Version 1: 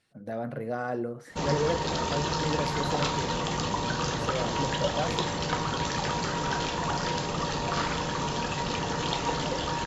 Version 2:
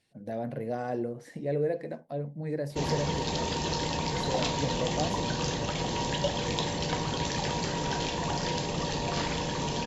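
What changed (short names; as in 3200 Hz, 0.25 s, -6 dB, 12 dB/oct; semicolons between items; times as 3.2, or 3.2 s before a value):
background: entry +1.40 s; master: add bell 1300 Hz -12.5 dB 0.48 oct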